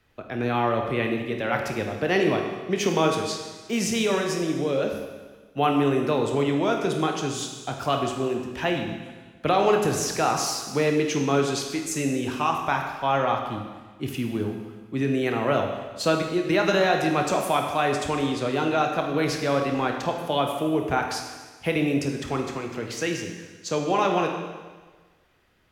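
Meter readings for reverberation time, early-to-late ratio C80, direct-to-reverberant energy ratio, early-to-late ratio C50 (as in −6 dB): 1.4 s, 6.5 dB, 2.5 dB, 4.5 dB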